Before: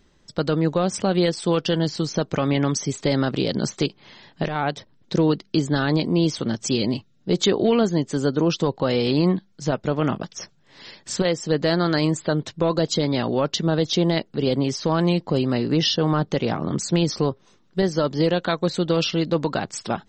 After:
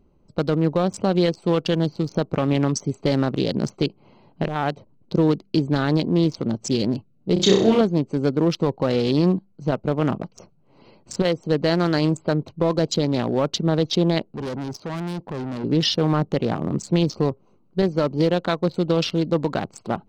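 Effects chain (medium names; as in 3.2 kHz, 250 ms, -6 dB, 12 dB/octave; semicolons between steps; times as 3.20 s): local Wiener filter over 25 samples; 7.33–7.81 s: flutter echo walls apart 5.4 m, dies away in 0.55 s; 14.32–15.64 s: valve stage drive 27 dB, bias 0.3; trim +1 dB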